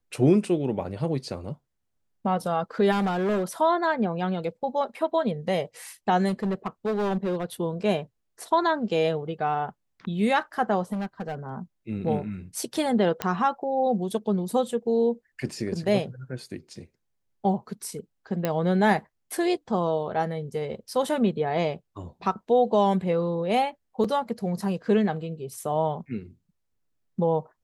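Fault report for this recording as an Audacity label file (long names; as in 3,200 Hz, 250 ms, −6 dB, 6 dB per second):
2.910000	3.440000	clipping −21.5 dBFS
6.280000	7.450000	clipping −22.5 dBFS
10.920000	11.490000	clipping −27 dBFS
13.220000	13.220000	click −11 dBFS
18.450000	18.450000	click −12 dBFS
24.040000	24.040000	drop-out 4.8 ms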